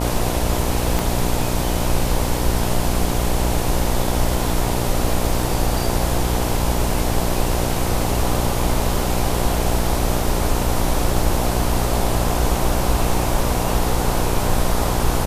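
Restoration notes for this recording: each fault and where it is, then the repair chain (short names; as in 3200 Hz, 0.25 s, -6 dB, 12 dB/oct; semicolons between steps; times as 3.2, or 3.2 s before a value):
buzz 60 Hz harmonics 17 -23 dBFS
0.99 pop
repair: de-click; de-hum 60 Hz, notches 17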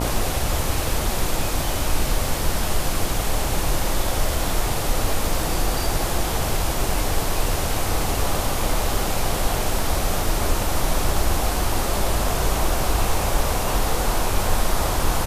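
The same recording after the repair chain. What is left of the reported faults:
0.99 pop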